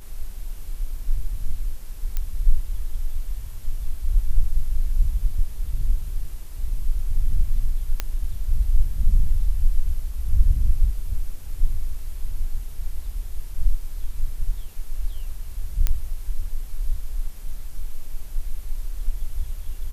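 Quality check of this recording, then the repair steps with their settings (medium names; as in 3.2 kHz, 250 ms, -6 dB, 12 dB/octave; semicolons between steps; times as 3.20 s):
2.17 s: pop -12 dBFS
8.00 s: pop -9 dBFS
15.87 s: pop -7 dBFS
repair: de-click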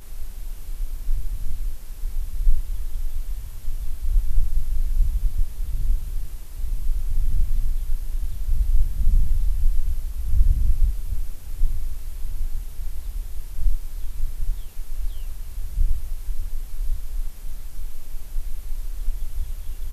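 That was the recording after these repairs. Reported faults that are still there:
nothing left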